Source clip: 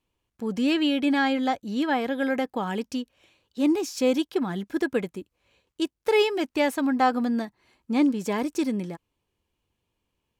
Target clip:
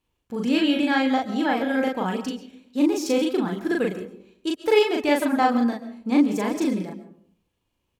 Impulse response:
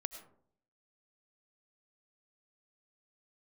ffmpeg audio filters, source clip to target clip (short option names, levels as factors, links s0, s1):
-filter_complex "[0:a]atempo=1.3,asplit=2[s0][s1];[1:a]atrim=start_sample=2205,adelay=38[s2];[s1][s2]afir=irnorm=-1:irlink=0,volume=1.06[s3];[s0][s3]amix=inputs=2:normalize=0"